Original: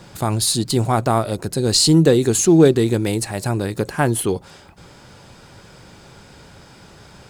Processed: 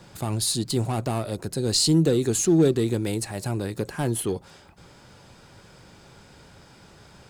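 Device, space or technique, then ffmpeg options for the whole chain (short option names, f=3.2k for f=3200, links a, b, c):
one-band saturation: -filter_complex "[0:a]acrossover=split=480|3000[a][b][c];[b]asoftclip=type=tanh:threshold=-23dB[d];[a][d][c]amix=inputs=3:normalize=0,volume=-6dB"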